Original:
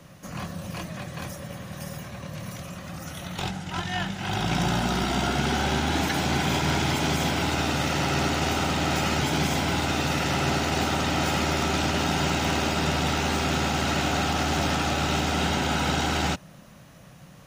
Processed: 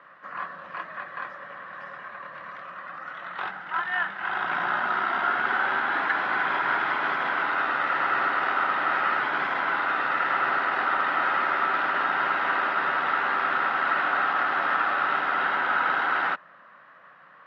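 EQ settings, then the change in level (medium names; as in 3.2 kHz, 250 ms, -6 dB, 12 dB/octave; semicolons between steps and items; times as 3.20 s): band-pass 590–4800 Hz; distance through air 420 m; high-order bell 1.4 kHz +11.5 dB 1.1 oct; 0.0 dB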